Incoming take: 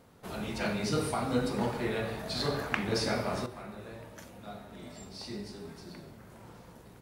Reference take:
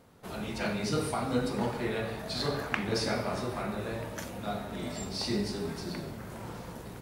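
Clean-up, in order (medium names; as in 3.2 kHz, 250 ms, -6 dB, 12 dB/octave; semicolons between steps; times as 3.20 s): gain correction +9.5 dB, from 3.46 s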